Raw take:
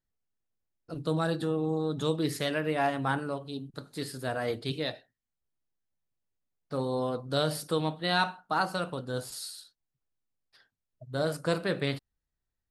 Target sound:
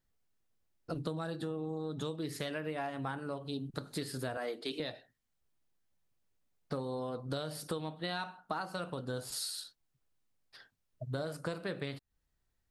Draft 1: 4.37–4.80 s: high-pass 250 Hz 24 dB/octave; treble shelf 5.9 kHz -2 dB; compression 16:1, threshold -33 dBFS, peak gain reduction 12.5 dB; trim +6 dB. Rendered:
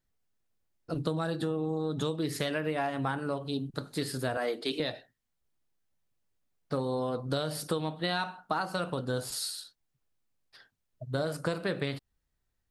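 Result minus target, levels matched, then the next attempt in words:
compression: peak gain reduction -6.5 dB
4.37–4.80 s: high-pass 250 Hz 24 dB/octave; treble shelf 5.9 kHz -2 dB; compression 16:1, threshold -40 dBFS, peak gain reduction 19 dB; trim +6 dB

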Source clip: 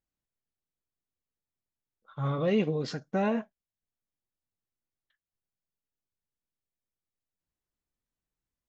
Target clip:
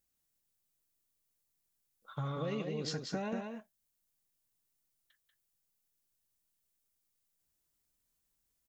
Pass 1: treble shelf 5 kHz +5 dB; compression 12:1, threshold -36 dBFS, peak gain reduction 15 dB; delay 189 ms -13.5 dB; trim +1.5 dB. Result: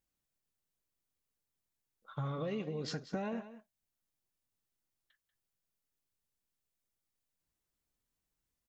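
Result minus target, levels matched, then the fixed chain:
echo-to-direct -8.5 dB; 8 kHz band -4.5 dB
treble shelf 5 kHz +14 dB; compression 12:1, threshold -36 dBFS, peak gain reduction 15.5 dB; delay 189 ms -5 dB; trim +1.5 dB

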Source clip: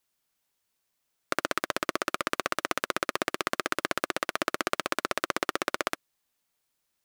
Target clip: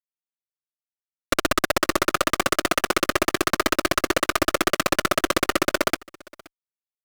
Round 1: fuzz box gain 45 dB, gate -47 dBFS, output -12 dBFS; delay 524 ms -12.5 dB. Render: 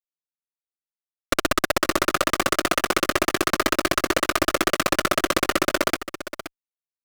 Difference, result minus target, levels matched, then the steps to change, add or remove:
echo-to-direct +12 dB
change: delay 524 ms -24.5 dB

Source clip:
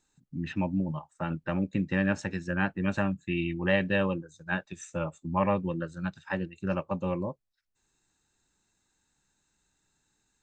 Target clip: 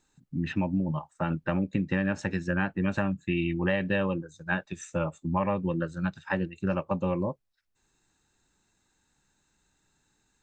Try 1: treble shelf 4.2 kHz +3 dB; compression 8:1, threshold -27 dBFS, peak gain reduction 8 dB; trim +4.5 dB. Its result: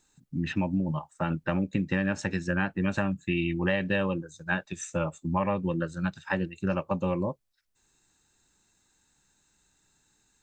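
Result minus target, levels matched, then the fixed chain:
8 kHz band +5.5 dB
treble shelf 4.2 kHz -4.5 dB; compression 8:1, threshold -27 dBFS, peak gain reduction 8 dB; trim +4.5 dB

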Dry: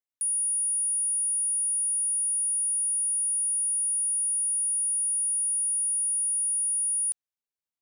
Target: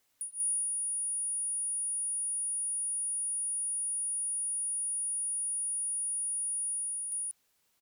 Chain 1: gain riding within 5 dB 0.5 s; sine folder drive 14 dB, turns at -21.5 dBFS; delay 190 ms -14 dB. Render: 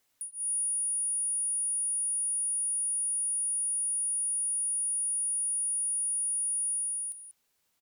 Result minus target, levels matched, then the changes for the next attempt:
echo-to-direct -11.5 dB
change: delay 190 ms -2.5 dB

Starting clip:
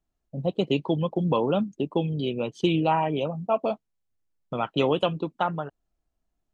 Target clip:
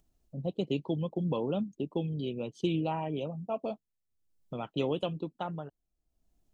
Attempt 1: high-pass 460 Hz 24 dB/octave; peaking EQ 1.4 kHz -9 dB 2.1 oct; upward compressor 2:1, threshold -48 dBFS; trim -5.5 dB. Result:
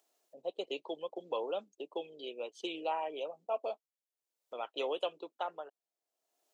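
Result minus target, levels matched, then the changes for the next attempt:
500 Hz band +2.5 dB
remove: high-pass 460 Hz 24 dB/octave

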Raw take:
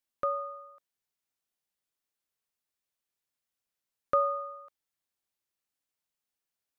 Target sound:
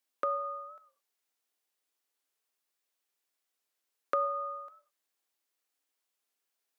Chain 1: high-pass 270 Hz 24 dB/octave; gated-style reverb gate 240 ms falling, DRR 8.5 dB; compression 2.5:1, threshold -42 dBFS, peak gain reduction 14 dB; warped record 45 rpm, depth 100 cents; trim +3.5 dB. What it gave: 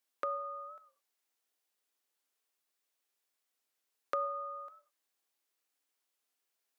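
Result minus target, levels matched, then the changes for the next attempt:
compression: peak gain reduction +4.5 dB
change: compression 2.5:1, threshold -34.5 dBFS, peak gain reduction 9.5 dB

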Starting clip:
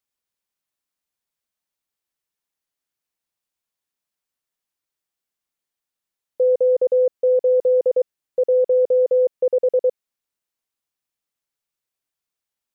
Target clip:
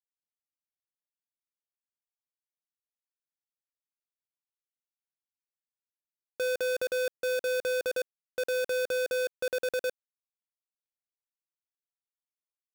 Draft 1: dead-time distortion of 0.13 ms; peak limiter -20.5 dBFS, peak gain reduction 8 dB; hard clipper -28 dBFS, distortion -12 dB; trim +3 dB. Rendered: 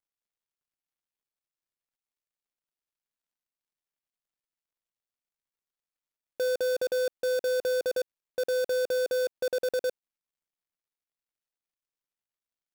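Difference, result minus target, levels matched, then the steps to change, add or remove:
dead-time distortion: distortion -15 dB
change: dead-time distortion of 0.44 ms

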